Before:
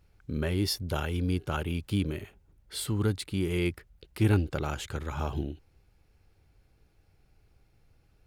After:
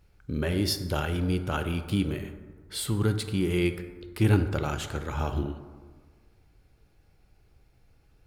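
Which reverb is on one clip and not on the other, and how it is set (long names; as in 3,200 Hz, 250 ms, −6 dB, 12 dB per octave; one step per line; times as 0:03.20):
dense smooth reverb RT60 1.6 s, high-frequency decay 0.4×, DRR 8 dB
level +2 dB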